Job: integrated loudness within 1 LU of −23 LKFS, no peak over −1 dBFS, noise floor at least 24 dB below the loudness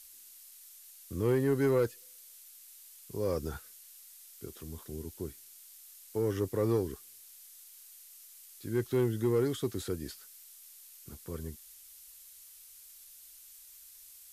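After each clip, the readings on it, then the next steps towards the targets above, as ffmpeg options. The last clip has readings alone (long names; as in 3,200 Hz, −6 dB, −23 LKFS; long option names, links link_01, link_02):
background noise floor −54 dBFS; target noise floor −57 dBFS; integrated loudness −33.0 LKFS; sample peak −19.0 dBFS; target loudness −23.0 LKFS
→ -af "afftdn=noise_reduction=6:noise_floor=-54"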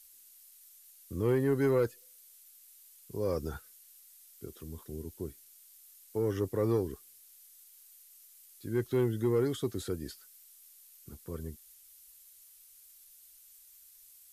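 background noise floor −58 dBFS; integrated loudness −33.0 LKFS; sample peak −19.0 dBFS; target loudness −23.0 LKFS
→ -af "volume=10dB"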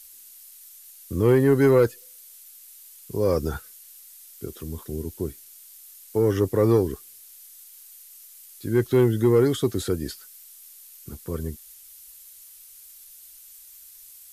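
integrated loudness −23.0 LKFS; sample peak −9.0 dBFS; background noise floor −48 dBFS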